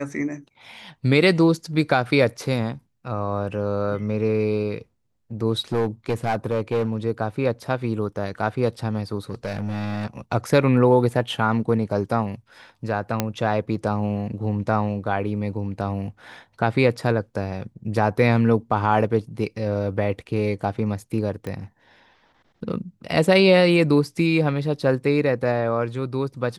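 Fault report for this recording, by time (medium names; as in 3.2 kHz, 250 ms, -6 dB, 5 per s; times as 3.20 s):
5.72–6.97 s: clipped -17.5 dBFS
9.30–10.06 s: clipped -22 dBFS
13.20 s: pop -6 dBFS
21.47 s: pop -19 dBFS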